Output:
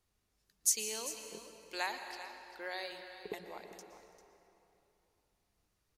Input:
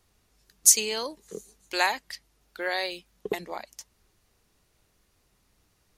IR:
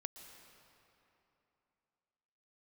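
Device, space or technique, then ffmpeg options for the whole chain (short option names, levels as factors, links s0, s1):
cave: -filter_complex "[0:a]aecho=1:1:396:0.211[s0];[1:a]atrim=start_sample=2205[s1];[s0][s1]afir=irnorm=-1:irlink=0,volume=0.376"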